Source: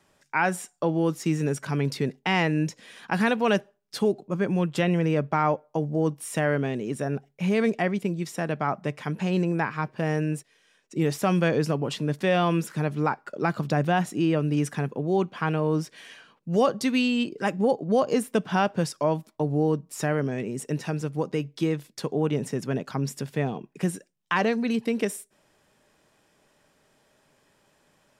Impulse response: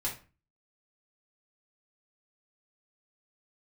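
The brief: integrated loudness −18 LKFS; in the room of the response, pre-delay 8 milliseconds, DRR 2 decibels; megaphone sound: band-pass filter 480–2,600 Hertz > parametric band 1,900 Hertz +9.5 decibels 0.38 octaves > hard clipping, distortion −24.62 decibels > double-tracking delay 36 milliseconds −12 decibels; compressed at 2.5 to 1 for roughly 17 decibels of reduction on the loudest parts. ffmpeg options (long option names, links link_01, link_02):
-filter_complex "[0:a]acompressor=threshold=-45dB:ratio=2.5,asplit=2[link_01][link_02];[1:a]atrim=start_sample=2205,adelay=8[link_03];[link_02][link_03]afir=irnorm=-1:irlink=0,volume=-5.5dB[link_04];[link_01][link_04]amix=inputs=2:normalize=0,highpass=480,lowpass=2600,equalizer=frequency=1900:width_type=o:width=0.38:gain=9.5,asoftclip=type=hard:threshold=-28.5dB,asplit=2[link_05][link_06];[link_06]adelay=36,volume=-12dB[link_07];[link_05][link_07]amix=inputs=2:normalize=0,volume=25dB"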